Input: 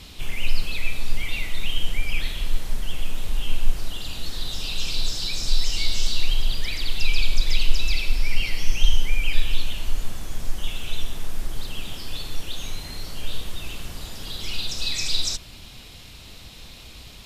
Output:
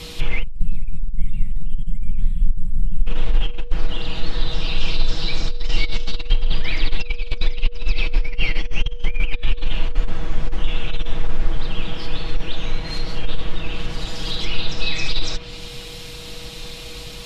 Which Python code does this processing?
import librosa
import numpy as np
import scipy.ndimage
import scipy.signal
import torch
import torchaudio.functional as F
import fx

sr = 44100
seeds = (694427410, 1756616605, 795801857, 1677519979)

y = fx.over_compress(x, sr, threshold_db=-18.0, ratio=-0.5)
y = y + 10.0 ** (-50.0 / 20.0) * np.sin(2.0 * np.pi * 480.0 * np.arange(len(y)) / sr)
y = fx.spec_box(y, sr, start_s=0.42, length_s=2.65, low_hz=250.0, high_hz=7400.0, gain_db=-27)
y = y + 0.56 * np.pad(y, (int(6.2 * sr / 1000.0), 0))[:len(y)]
y = fx.env_lowpass_down(y, sr, base_hz=2600.0, full_db=-17.0)
y = y * librosa.db_to_amplitude(4.0)